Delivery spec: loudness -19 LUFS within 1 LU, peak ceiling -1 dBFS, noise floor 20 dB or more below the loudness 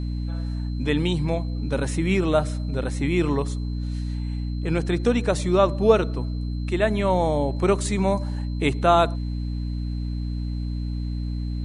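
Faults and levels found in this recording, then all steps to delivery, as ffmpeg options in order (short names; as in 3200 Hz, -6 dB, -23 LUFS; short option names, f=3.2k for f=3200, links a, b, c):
hum 60 Hz; harmonics up to 300 Hz; hum level -25 dBFS; steady tone 4100 Hz; tone level -50 dBFS; loudness -24.5 LUFS; peak -4.0 dBFS; loudness target -19.0 LUFS
-> -af "bandreject=f=60:t=h:w=4,bandreject=f=120:t=h:w=4,bandreject=f=180:t=h:w=4,bandreject=f=240:t=h:w=4,bandreject=f=300:t=h:w=4"
-af "bandreject=f=4.1k:w=30"
-af "volume=5.5dB,alimiter=limit=-1dB:level=0:latency=1"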